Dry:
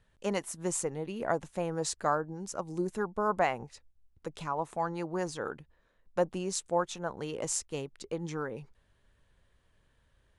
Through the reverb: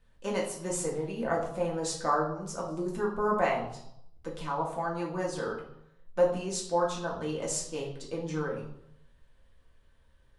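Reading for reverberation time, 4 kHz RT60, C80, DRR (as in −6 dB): 0.75 s, 0.60 s, 9.5 dB, −3.5 dB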